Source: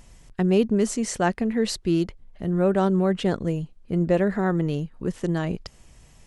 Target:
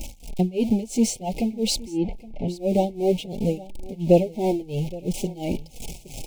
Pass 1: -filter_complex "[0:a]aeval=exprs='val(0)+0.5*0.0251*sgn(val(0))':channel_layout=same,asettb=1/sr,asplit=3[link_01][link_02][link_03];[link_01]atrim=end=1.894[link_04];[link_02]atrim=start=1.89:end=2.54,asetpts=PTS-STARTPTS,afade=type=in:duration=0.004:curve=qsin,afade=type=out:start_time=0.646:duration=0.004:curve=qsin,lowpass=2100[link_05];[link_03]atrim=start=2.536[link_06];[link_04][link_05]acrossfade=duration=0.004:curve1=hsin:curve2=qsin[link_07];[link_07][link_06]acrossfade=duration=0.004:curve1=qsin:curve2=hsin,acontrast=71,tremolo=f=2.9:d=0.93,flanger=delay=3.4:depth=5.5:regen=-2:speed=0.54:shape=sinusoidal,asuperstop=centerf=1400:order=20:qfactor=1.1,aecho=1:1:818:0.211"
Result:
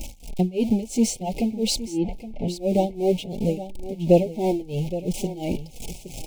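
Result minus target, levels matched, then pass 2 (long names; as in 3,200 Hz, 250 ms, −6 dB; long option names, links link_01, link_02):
echo-to-direct +6.5 dB
-filter_complex "[0:a]aeval=exprs='val(0)+0.5*0.0251*sgn(val(0))':channel_layout=same,asettb=1/sr,asplit=3[link_01][link_02][link_03];[link_01]atrim=end=1.894[link_04];[link_02]atrim=start=1.89:end=2.54,asetpts=PTS-STARTPTS,afade=type=in:duration=0.004:curve=qsin,afade=type=out:start_time=0.646:duration=0.004:curve=qsin,lowpass=2100[link_05];[link_03]atrim=start=2.536[link_06];[link_04][link_05]acrossfade=duration=0.004:curve1=hsin:curve2=qsin[link_07];[link_07][link_06]acrossfade=duration=0.004:curve1=qsin:curve2=hsin,acontrast=71,tremolo=f=2.9:d=0.93,flanger=delay=3.4:depth=5.5:regen=-2:speed=0.54:shape=sinusoidal,asuperstop=centerf=1400:order=20:qfactor=1.1,aecho=1:1:818:0.1"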